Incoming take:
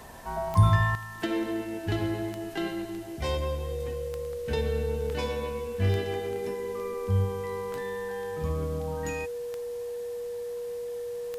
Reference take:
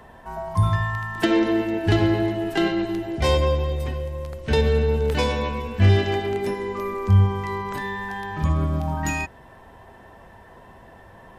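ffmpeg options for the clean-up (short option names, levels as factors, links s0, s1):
-af "adeclick=t=4,bandreject=f=480:w=30,afwtdn=0.002,asetnsamples=n=441:p=0,asendcmd='0.95 volume volume 10dB',volume=1"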